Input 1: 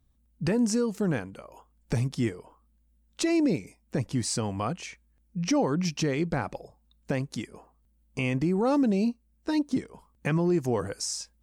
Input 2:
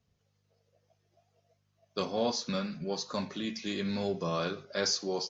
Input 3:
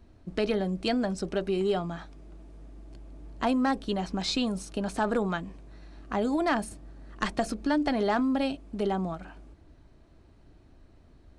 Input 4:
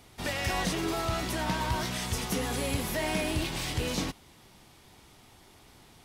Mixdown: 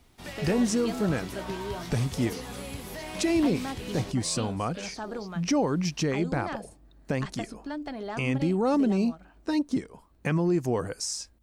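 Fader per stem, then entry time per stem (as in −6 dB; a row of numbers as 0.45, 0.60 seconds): 0.0, −12.5, −9.5, −8.0 decibels; 0.00, 0.00, 0.00, 0.00 seconds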